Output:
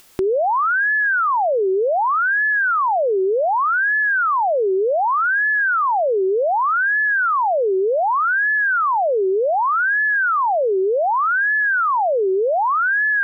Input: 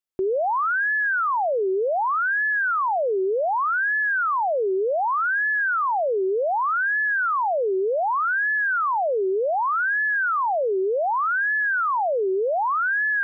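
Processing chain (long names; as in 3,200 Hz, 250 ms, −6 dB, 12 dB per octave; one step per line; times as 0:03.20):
upward compression, threshold −27 dBFS
level +4.5 dB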